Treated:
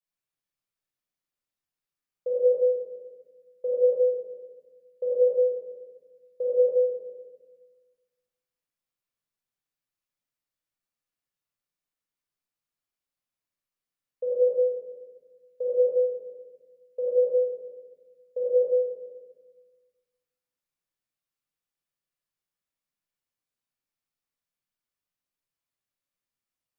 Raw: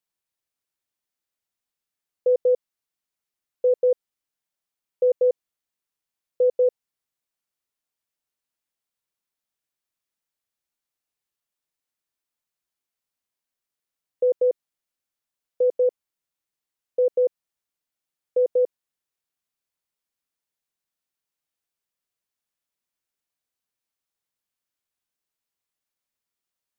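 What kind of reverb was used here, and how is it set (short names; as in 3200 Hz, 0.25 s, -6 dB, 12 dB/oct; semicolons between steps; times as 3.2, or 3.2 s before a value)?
shoebox room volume 980 m³, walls mixed, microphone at 5.7 m; gain -14 dB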